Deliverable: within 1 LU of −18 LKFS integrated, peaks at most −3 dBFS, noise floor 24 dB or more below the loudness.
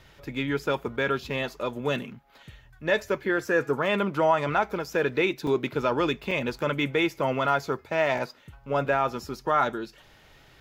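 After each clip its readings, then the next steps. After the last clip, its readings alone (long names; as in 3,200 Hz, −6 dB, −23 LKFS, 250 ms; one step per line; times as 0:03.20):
number of dropouts 3; longest dropout 2.7 ms; integrated loudness −27.0 LKFS; sample peak −10.5 dBFS; target loudness −18.0 LKFS
→ repair the gap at 0:05.47/0:06.31/0:08.18, 2.7 ms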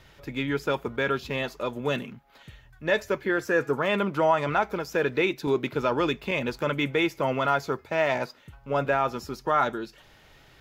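number of dropouts 0; integrated loudness −27.0 LKFS; sample peak −10.5 dBFS; target loudness −18.0 LKFS
→ level +9 dB
brickwall limiter −3 dBFS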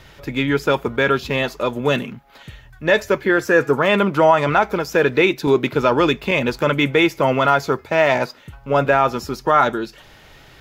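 integrated loudness −18.0 LKFS; sample peak −3.0 dBFS; background noise floor −47 dBFS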